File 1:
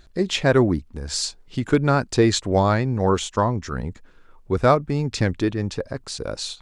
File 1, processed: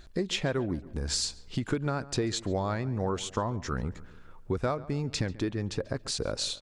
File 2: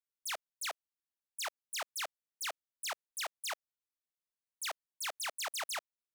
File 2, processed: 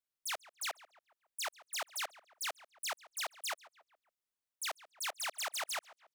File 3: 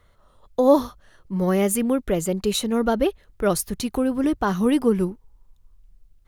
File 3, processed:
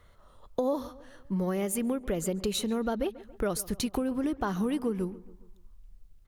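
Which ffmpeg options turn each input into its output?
-filter_complex "[0:a]acompressor=threshold=-27dB:ratio=6,asplit=2[a][b];[b]adelay=139,lowpass=f=2.6k:p=1,volume=-18dB,asplit=2[c][d];[d]adelay=139,lowpass=f=2.6k:p=1,volume=0.51,asplit=2[e][f];[f]adelay=139,lowpass=f=2.6k:p=1,volume=0.51,asplit=2[g][h];[h]adelay=139,lowpass=f=2.6k:p=1,volume=0.51[i];[c][e][g][i]amix=inputs=4:normalize=0[j];[a][j]amix=inputs=2:normalize=0"

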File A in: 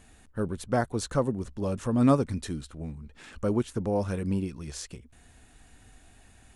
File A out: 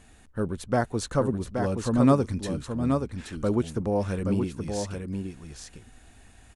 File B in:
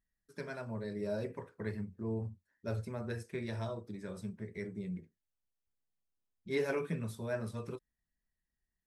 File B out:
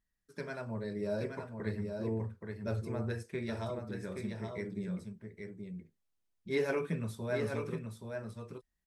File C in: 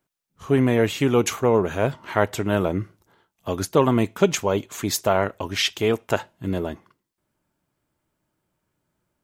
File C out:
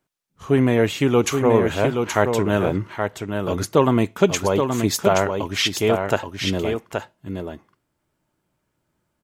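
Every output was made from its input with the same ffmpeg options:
-filter_complex "[0:a]highshelf=f=12k:g=-5,asplit=2[a][b];[b]aecho=0:1:825:0.531[c];[a][c]amix=inputs=2:normalize=0,volume=1.5dB"

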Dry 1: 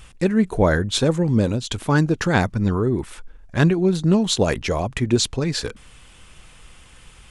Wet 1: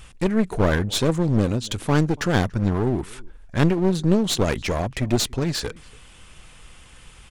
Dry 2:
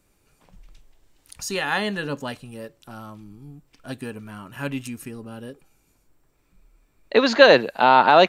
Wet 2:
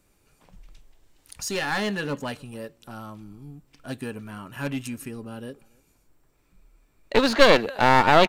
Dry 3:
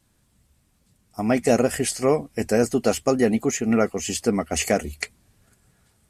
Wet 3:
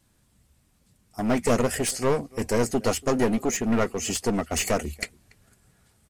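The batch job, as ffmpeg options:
-filter_complex "[0:a]asplit=2[a][b];[b]adelay=285.7,volume=-27dB,highshelf=f=4k:g=-6.43[c];[a][c]amix=inputs=2:normalize=0,aeval=exprs='clip(val(0),-1,0.0596)':c=same"

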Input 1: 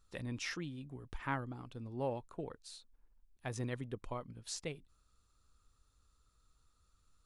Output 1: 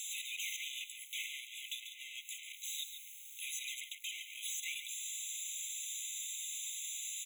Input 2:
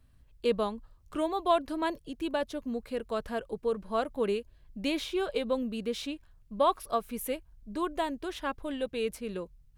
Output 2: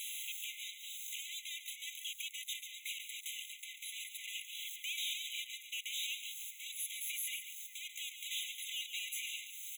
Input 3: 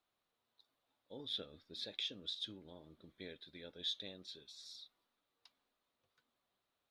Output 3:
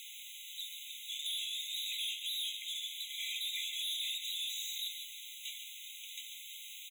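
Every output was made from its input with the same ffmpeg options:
-filter_complex "[0:a]highpass=f=41:w=0.5412,highpass=f=41:w=1.3066,equalizer=f=770:w=0.59:g=-9.5,bandreject=f=60:t=h:w=6,bandreject=f=120:t=h:w=6,bandreject=f=180:t=h:w=6,bandreject=f=240:t=h:w=6,bandreject=f=300:t=h:w=6,bandreject=f=360:t=h:w=6,bandreject=f=420:t=h:w=6,bandreject=f=480:t=h:w=6,acompressor=threshold=-50dB:ratio=6,asplit=2[a][b];[b]highpass=f=720:p=1,volume=36dB,asoftclip=type=tanh:threshold=-32.5dB[c];[a][c]amix=inputs=2:normalize=0,lowpass=f=3.7k:p=1,volume=-6dB,crystalizer=i=7.5:c=0,aeval=exprs='(tanh(158*val(0)+0.65)-tanh(0.65))/158':c=same,aecho=1:1:141:0.335,afftfilt=real='re*eq(mod(floor(b*sr/1024/2000),2),1)':imag='im*eq(mod(floor(b*sr/1024/2000),2),1)':win_size=1024:overlap=0.75,volume=7.5dB"

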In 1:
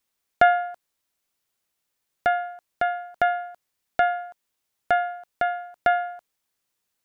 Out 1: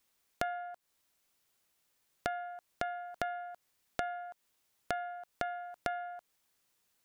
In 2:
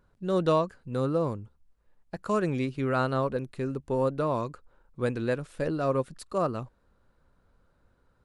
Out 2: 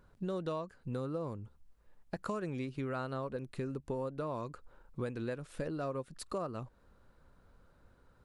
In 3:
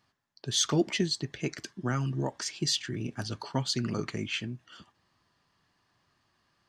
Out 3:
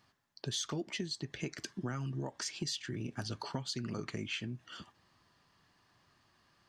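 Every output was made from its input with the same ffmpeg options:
-af "acompressor=threshold=-38dB:ratio=6,volume=2.5dB"

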